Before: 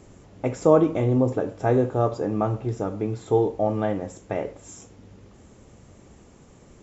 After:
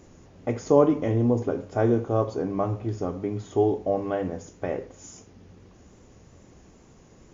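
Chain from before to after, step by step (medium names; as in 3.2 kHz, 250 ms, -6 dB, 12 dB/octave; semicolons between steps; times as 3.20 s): tape speed -7%; wow and flutter 25 cents; hum notches 50/100/150/200 Hz; trim -1.5 dB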